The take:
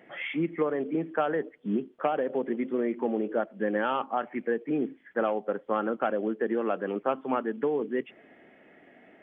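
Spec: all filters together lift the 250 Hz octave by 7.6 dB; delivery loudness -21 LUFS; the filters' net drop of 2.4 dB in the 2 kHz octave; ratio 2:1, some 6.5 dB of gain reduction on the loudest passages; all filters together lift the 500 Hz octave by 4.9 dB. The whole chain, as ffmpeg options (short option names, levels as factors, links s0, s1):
-af "equalizer=f=250:t=o:g=8.5,equalizer=f=500:t=o:g=3.5,equalizer=f=2000:t=o:g=-3.5,acompressor=threshold=0.0355:ratio=2,volume=2.82"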